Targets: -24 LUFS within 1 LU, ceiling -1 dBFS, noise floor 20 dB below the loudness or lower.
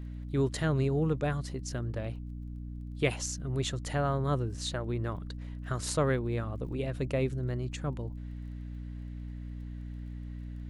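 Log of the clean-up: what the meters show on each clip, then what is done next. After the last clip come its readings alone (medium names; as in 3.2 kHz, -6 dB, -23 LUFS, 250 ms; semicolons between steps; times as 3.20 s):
tick rate 18 per s; hum 60 Hz; highest harmonic 300 Hz; hum level -37 dBFS; loudness -34.0 LUFS; peak level -14.5 dBFS; loudness target -24.0 LUFS
-> de-click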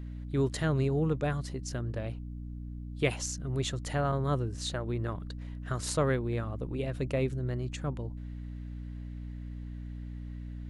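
tick rate 0 per s; hum 60 Hz; highest harmonic 300 Hz; hum level -37 dBFS
-> de-hum 60 Hz, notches 5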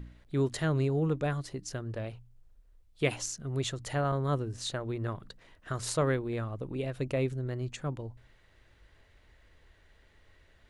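hum not found; loudness -33.0 LUFS; peak level -14.5 dBFS; loudness target -24.0 LUFS
-> trim +9 dB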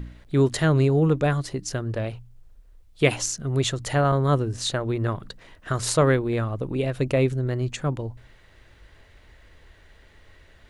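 loudness -24.0 LUFS; peak level -5.5 dBFS; noise floor -54 dBFS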